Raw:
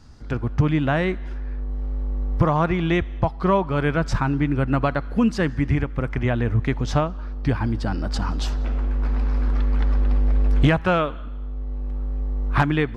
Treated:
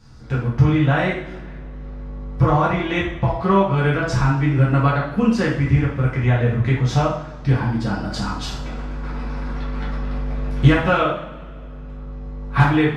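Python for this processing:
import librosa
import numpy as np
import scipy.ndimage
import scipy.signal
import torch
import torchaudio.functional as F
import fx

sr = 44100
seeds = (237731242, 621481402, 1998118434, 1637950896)

y = fx.rev_double_slope(x, sr, seeds[0], early_s=0.55, late_s=2.5, knee_db=-22, drr_db=-6.5)
y = y * 10.0 ** (-4.0 / 20.0)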